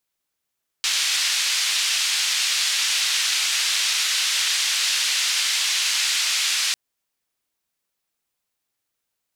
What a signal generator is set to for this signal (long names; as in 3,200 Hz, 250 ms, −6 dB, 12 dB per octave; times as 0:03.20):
band-limited noise 2,400–5,200 Hz, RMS −22 dBFS 5.90 s